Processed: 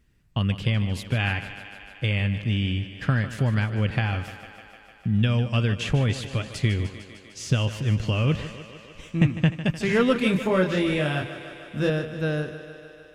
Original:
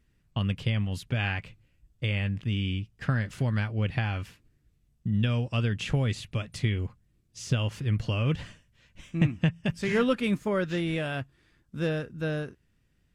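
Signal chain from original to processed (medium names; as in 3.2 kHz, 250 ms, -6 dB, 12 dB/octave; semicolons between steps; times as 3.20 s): 10.13–11.90 s: doubling 27 ms -3 dB; thinning echo 151 ms, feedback 76%, high-pass 170 Hz, level -12 dB; trim +4 dB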